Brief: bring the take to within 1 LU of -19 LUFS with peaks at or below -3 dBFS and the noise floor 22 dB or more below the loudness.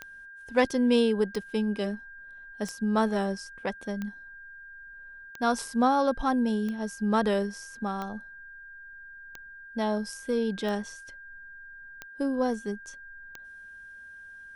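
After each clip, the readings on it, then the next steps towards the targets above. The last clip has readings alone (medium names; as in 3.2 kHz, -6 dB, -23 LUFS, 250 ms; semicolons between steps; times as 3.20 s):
clicks found 11; steady tone 1.6 kHz; tone level -44 dBFS; loudness -28.5 LUFS; peak level -9.0 dBFS; loudness target -19.0 LUFS
-> de-click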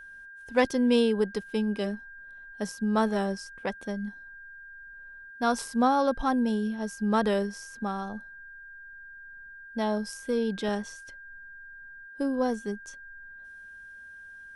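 clicks found 0; steady tone 1.6 kHz; tone level -44 dBFS
-> band-stop 1.6 kHz, Q 30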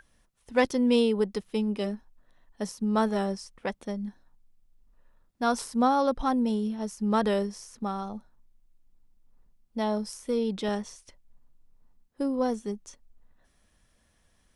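steady tone not found; loudness -28.5 LUFS; peak level -9.0 dBFS; loudness target -19.0 LUFS
-> trim +9.5 dB; peak limiter -3 dBFS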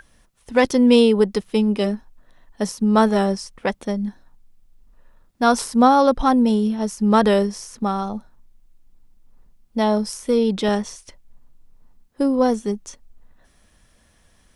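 loudness -19.5 LUFS; peak level -3.0 dBFS; noise floor -58 dBFS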